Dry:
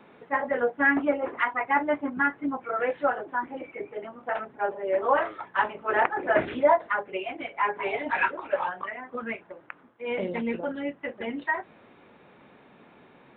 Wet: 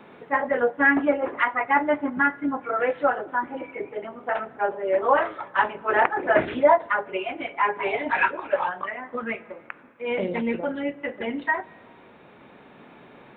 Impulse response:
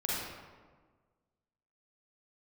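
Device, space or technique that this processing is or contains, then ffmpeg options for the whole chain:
ducked reverb: -filter_complex "[0:a]asplit=3[link_01][link_02][link_03];[1:a]atrim=start_sample=2205[link_04];[link_02][link_04]afir=irnorm=-1:irlink=0[link_05];[link_03]apad=whole_len=589449[link_06];[link_05][link_06]sidechaincompress=threshold=-46dB:ratio=3:attack=8.7:release=864,volume=-9.5dB[link_07];[link_01][link_07]amix=inputs=2:normalize=0,volume=3dB"

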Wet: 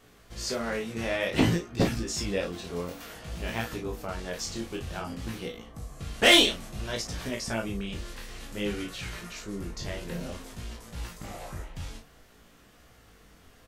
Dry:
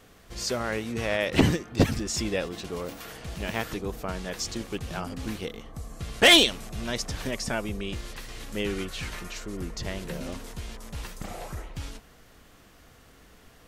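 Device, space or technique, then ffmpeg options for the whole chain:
double-tracked vocal: -filter_complex "[0:a]asplit=2[link_01][link_02];[link_02]adelay=35,volume=-6dB[link_03];[link_01][link_03]amix=inputs=2:normalize=0,flanger=delay=16.5:depth=6.6:speed=0.55"

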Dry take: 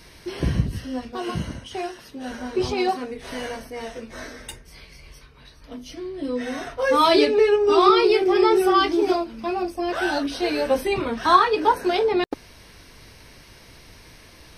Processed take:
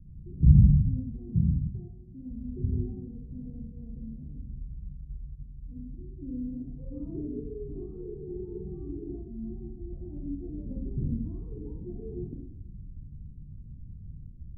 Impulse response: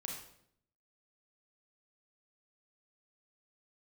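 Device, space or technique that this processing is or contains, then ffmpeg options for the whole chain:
club heard from the street: -filter_complex "[0:a]alimiter=limit=-11dB:level=0:latency=1:release=15,lowpass=frequency=170:width=0.5412,lowpass=frequency=170:width=1.3066[link_01];[1:a]atrim=start_sample=2205[link_02];[link_01][link_02]afir=irnorm=-1:irlink=0,volume=9dB"

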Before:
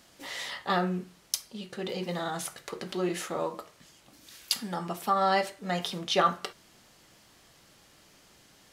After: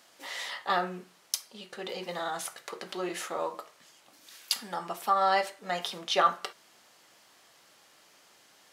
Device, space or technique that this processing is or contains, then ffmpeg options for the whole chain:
filter by subtraction: -filter_complex "[0:a]asplit=2[link_01][link_02];[link_02]lowpass=830,volume=-1[link_03];[link_01][link_03]amix=inputs=2:normalize=0,volume=-1dB"

